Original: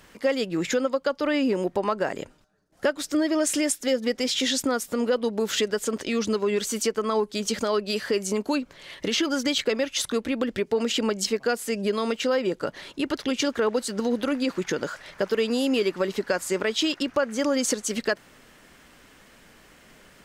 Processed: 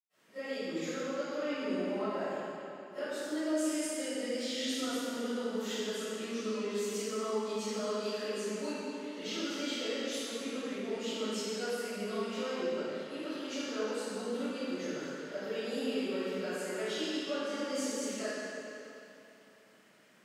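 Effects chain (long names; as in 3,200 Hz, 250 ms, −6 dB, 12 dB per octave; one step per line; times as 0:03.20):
high-pass filter 140 Hz 24 dB per octave
convolution reverb RT60 2.9 s, pre-delay 90 ms, DRR −60 dB
level +3.5 dB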